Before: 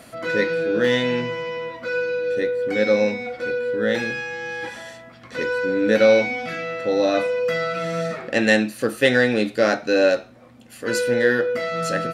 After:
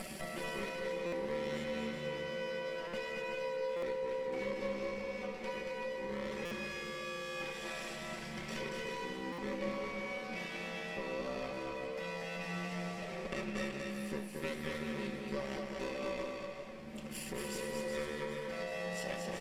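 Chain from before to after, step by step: comb filter that takes the minimum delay 0.38 ms; compression 6:1, threshold -46 dBFS, peak gain reduction 30.5 dB; granular stretch 1.6×, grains 28 ms; bouncing-ball echo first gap 230 ms, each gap 0.65×, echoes 5; resampled via 32 kHz; buffer glitch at 1.06/2.87/3.76/6.45/9.32 s, samples 256, times 10; modulated delay 385 ms, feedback 78%, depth 56 cents, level -16.5 dB; trim +5.5 dB

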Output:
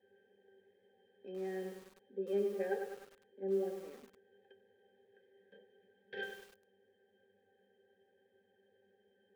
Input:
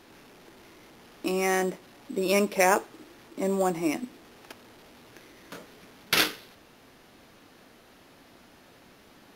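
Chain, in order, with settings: vowel filter e; pitch-class resonator G, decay 0.19 s; bit-crushed delay 101 ms, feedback 55%, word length 11-bit, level -6.5 dB; trim +11.5 dB

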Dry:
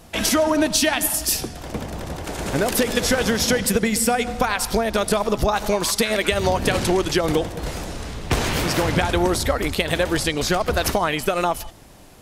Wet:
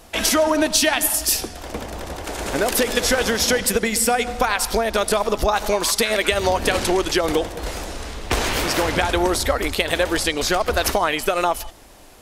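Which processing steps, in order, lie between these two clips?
peaking EQ 140 Hz -11.5 dB 1.3 oct; trim +2 dB

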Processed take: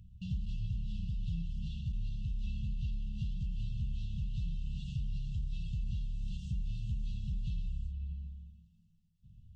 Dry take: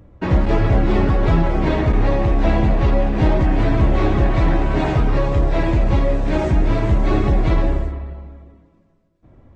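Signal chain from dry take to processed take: compression 4:1, threshold -27 dBFS, peak gain reduction 14 dB; brick-wall FIR band-stop 210–2600 Hz; trim -7 dB

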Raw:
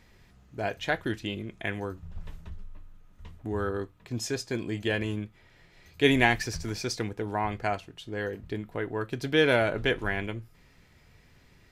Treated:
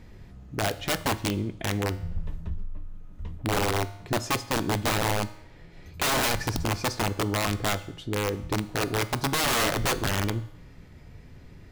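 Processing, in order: tilt shelf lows +6 dB, about 740 Hz; in parallel at +0.5 dB: compression 6:1, threshold -39 dBFS, peak gain reduction 23 dB; on the sum: integer overflow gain 19.5 dB; reverberation RT60 0.80 s, pre-delay 3 ms, DRR 13 dB

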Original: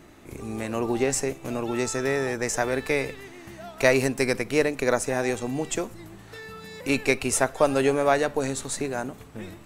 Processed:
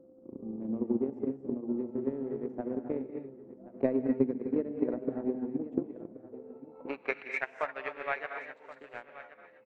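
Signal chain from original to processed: local Wiener filter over 25 samples; bass shelf 220 Hz -10.5 dB; gated-style reverb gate 290 ms rising, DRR 2.5 dB; band-pass sweep 250 Hz -> 2.1 kHz, 6.07–7.38 s; whistle 520 Hz -55 dBFS; transient shaper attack +10 dB, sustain -5 dB; tape spacing loss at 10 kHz 34 dB; delay 1076 ms -16 dB

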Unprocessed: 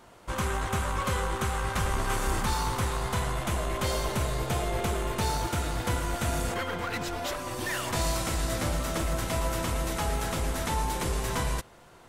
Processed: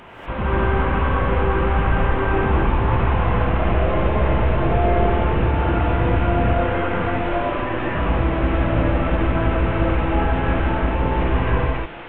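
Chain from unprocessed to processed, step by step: one-bit delta coder 16 kbps, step -42.5 dBFS; gated-style reverb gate 270 ms rising, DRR -7 dB; trim +5.5 dB

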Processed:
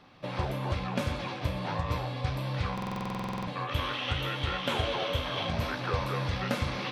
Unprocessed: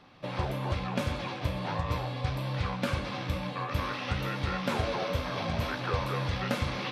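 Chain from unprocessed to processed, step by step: 3.67–5.50 s: graphic EQ with 31 bands 200 Hz -10 dB, 3.15 kHz +11 dB, 5 kHz -5 dB; buffer glitch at 2.73 s, samples 2048, times 15

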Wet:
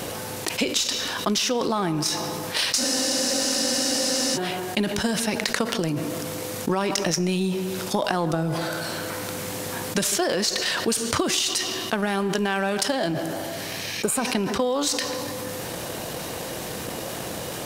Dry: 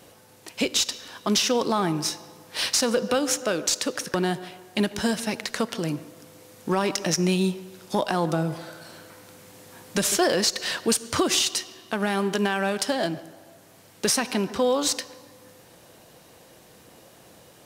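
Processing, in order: spectral replace 13.41–14.22 s, 1.6–6.7 kHz both; transient shaper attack +10 dB, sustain +6 dB; spectral freeze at 2.81 s, 1.55 s; level flattener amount 70%; trim -9.5 dB

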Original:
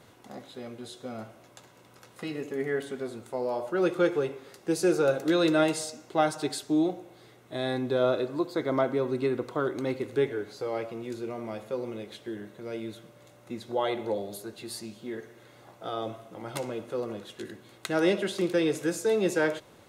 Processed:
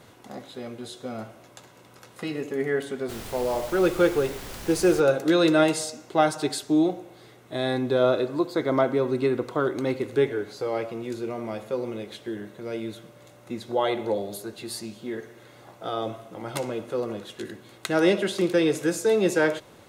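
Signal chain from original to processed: 3.08–4.99 s: added noise pink -43 dBFS; trim +4 dB

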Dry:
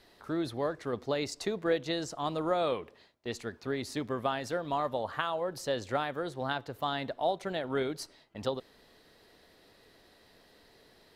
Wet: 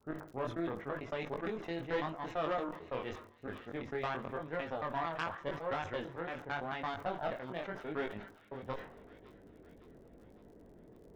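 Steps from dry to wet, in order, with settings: slices played last to first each 112 ms, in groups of 3; level-controlled noise filter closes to 330 Hz, open at -26.5 dBFS; boxcar filter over 10 samples; valve stage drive 25 dB, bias 0.7; reverse; upward compressor, threshold -38 dBFS; reverse; chorus 0.87 Hz, delay 18.5 ms, depth 5.6 ms; crackle 59 per s -63 dBFS; tilt shelf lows -4 dB, about 1.3 kHz; feedback echo behind a high-pass 559 ms, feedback 55%, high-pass 1.5 kHz, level -14.5 dB; reverberation RT60 1.2 s, pre-delay 8 ms, DRR 18 dB; decay stretcher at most 100 dB/s; trim +3 dB

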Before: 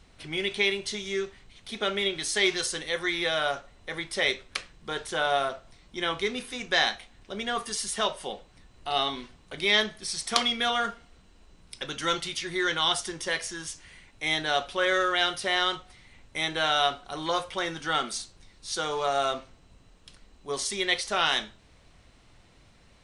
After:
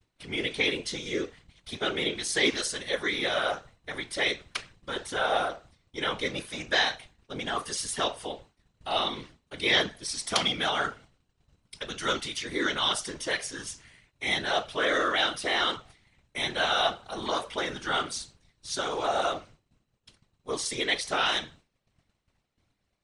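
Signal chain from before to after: whisper effect; expander -45 dBFS; trim -1 dB

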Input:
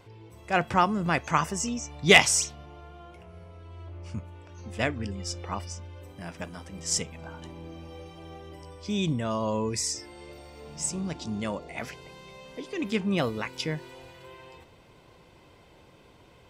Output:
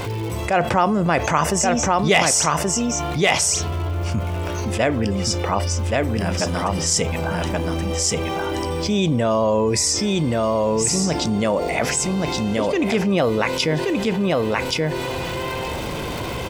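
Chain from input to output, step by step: dynamic bell 580 Hz, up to +7 dB, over -43 dBFS, Q 1.1; crackle 280 per s -52 dBFS; on a send: delay 1127 ms -4.5 dB; on the sum: level flattener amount 70%; trim -4 dB

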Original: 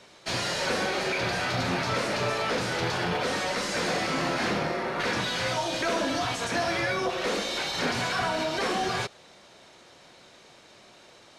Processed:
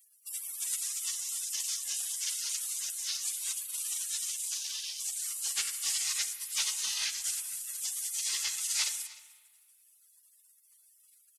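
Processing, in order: spectral gate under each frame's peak -30 dB weak; tilt shelf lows -9.5 dB, about 870 Hz; on a send: delay 305 ms -20.5 dB; on the sum: spring tank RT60 1.5 s, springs 33/39/48 ms, chirp 65 ms, DRR 11.5 dB; trim +7.5 dB

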